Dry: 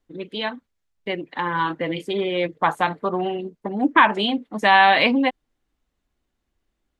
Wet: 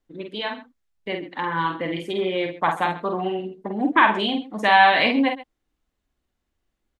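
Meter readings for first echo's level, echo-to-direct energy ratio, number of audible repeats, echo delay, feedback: -5.0 dB, -4.5 dB, 2, 48 ms, no steady repeat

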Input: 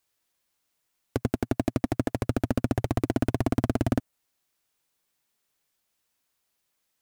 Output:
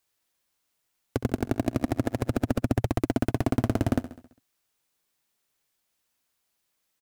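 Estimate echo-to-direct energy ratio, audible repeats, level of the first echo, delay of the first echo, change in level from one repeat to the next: -12.5 dB, 5, -14.0 dB, 67 ms, -5.0 dB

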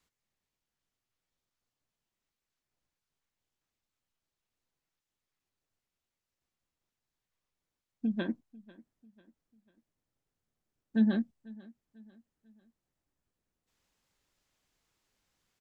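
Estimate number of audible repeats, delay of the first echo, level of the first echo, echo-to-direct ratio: 2, 0.495 s, -22.0 dB, -21.0 dB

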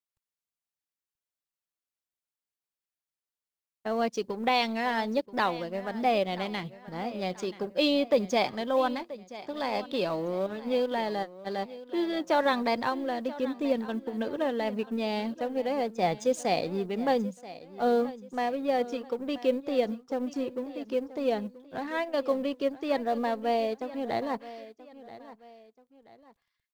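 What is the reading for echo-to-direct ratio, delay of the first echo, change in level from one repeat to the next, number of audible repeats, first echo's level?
-16.0 dB, 0.981 s, -8.5 dB, 2, -16.5 dB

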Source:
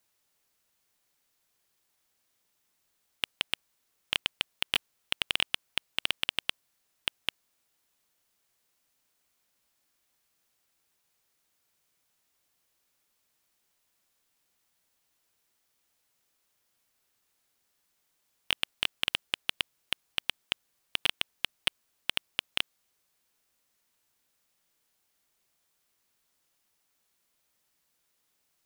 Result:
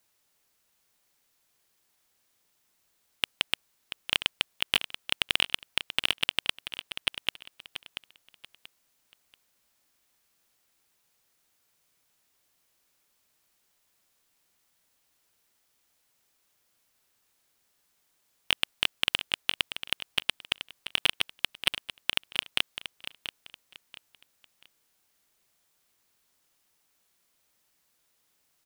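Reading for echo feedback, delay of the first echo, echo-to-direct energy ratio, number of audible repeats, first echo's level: 29%, 0.684 s, -10.5 dB, 3, -11.0 dB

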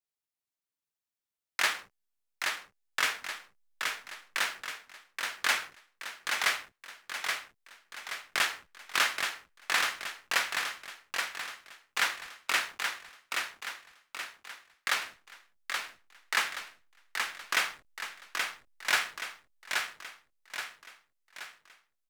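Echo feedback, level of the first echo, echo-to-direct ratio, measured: 47%, -4.5 dB, -3.5 dB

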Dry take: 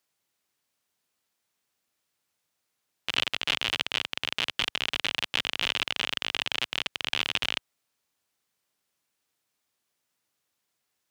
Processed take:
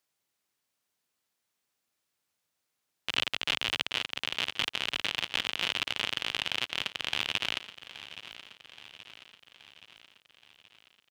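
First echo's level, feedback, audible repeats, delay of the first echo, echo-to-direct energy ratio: -15.0 dB, 58%, 5, 0.825 s, -13.0 dB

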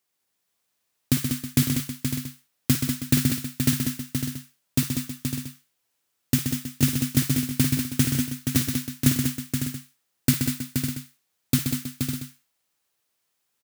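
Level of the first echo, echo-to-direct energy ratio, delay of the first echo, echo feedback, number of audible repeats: -11.5 dB, 0.0 dB, 54 ms, no steady repeat, 8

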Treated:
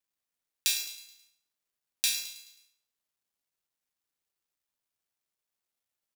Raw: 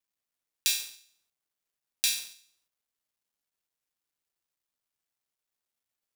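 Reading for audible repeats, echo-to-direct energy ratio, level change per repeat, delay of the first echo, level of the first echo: 4, -11.5 dB, -6.5 dB, 0.107 s, -12.5 dB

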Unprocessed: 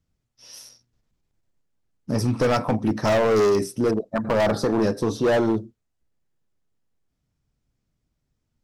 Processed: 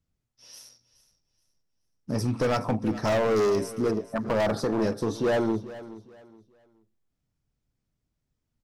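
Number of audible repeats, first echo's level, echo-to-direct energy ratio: 2, -16.5 dB, -16.0 dB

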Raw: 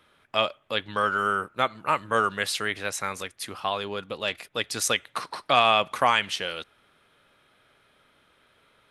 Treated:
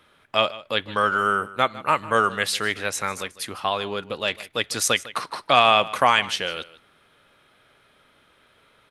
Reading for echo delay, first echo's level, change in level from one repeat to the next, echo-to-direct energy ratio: 0.153 s, -18.0 dB, no steady repeat, -18.0 dB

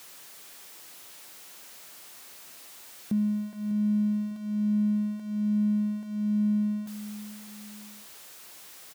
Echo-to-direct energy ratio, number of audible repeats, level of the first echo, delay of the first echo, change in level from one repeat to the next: -13.0 dB, 2, -14.0 dB, 0.6 s, -7.5 dB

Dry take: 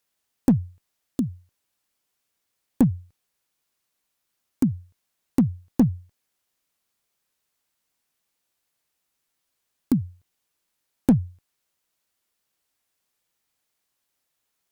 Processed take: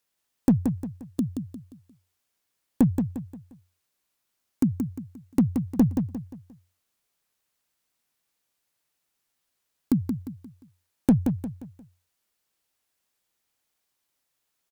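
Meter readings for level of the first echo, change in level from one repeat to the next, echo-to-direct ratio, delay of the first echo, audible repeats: -6.5 dB, -8.5 dB, -6.0 dB, 0.176 s, 4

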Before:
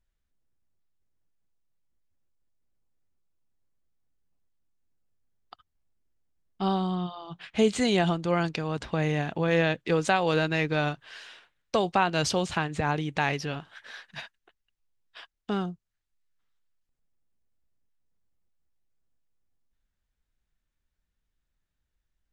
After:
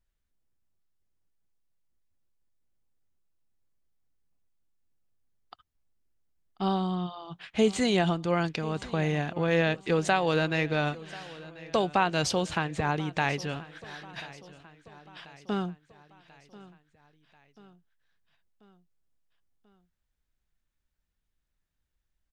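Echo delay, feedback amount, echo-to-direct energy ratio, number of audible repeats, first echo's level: 1.038 s, 55%, -18.0 dB, 3, -19.5 dB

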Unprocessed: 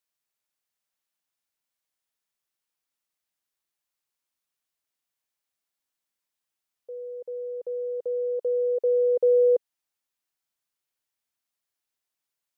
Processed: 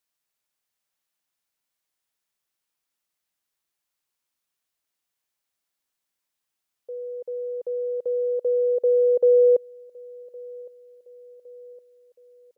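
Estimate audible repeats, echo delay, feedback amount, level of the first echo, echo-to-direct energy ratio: 3, 1.112 s, 54%, -24.0 dB, -22.5 dB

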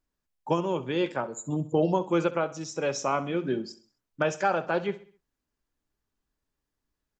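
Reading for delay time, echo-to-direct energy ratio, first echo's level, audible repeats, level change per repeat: 65 ms, -15.5 dB, -16.5 dB, 3, -7.0 dB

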